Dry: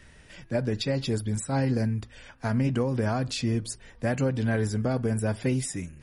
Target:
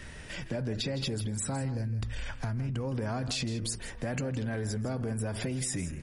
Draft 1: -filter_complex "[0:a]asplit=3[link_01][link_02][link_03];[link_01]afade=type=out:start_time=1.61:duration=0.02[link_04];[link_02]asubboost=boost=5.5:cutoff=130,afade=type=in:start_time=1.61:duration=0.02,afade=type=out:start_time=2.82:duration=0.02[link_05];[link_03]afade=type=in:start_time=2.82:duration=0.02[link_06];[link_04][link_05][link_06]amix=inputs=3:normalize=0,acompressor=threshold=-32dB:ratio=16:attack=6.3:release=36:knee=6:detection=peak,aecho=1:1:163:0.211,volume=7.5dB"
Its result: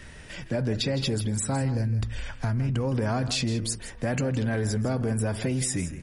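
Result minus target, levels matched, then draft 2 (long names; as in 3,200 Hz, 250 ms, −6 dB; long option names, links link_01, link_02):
downward compressor: peak gain reduction −6.5 dB
-filter_complex "[0:a]asplit=3[link_01][link_02][link_03];[link_01]afade=type=out:start_time=1.61:duration=0.02[link_04];[link_02]asubboost=boost=5.5:cutoff=130,afade=type=in:start_time=1.61:duration=0.02,afade=type=out:start_time=2.82:duration=0.02[link_05];[link_03]afade=type=in:start_time=2.82:duration=0.02[link_06];[link_04][link_05][link_06]amix=inputs=3:normalize=0,acompressor=threshold=-39dB:ratio=16:attack=6.3:release=36:knee=6:detection=peak,aecho=1:1:163:0.211,volume=7.5dB"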